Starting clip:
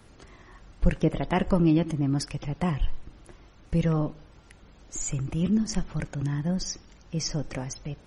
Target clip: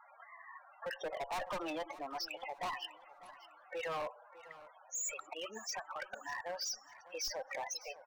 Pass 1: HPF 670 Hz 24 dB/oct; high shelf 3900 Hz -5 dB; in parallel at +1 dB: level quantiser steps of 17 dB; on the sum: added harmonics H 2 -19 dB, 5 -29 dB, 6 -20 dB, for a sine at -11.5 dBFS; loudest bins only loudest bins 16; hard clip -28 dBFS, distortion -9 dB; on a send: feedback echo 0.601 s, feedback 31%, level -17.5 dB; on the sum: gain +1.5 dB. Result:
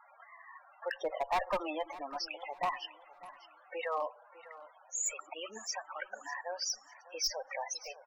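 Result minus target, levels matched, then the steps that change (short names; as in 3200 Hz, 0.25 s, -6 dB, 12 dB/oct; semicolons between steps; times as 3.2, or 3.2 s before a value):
hard clip: distortion -6 dB
change: hard clip -37.5 dBFS, distortion -3 dB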